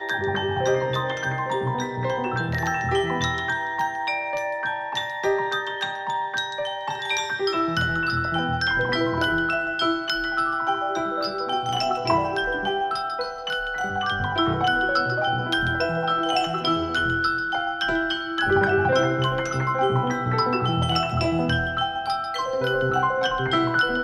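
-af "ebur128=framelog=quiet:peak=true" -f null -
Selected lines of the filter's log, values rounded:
Integrated loudness:
  I:         -23.7 LUFS
  Threshold: -33.7 LUFS
Loudness range:
  LRA:         2.9 LU
  Threshold: -43.7 LUFS
  LRA low:   -25.2 LUFS
  LRA high:  -22.3 LUFS
True peak:
  Peak:       -6.8 dBFS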